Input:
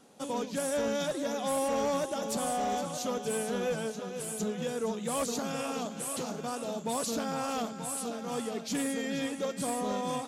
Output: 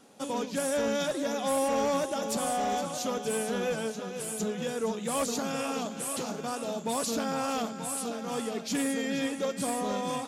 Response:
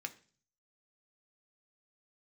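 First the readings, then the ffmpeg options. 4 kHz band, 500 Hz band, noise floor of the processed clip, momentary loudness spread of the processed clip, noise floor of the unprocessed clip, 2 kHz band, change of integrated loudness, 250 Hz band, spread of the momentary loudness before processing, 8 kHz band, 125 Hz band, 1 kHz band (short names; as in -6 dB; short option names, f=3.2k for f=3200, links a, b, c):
+2.5 dB, +1.5 dB, -40 dBFS, 5 LU, -42 dBFS, +3.0 dB, +2.0 dB, +2.0 dB, 5 LU, +2.0 dB, +0.5 dB, +2.0 dB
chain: -filter_complex "[0:a]asplit=2[a][b];[1:a]atrim=start_sample=2205[c];[b][c]afir=irnorm=-1:irlink=0,volume=-7dB[d];[a][d]amix=inputs=2:normalize=0"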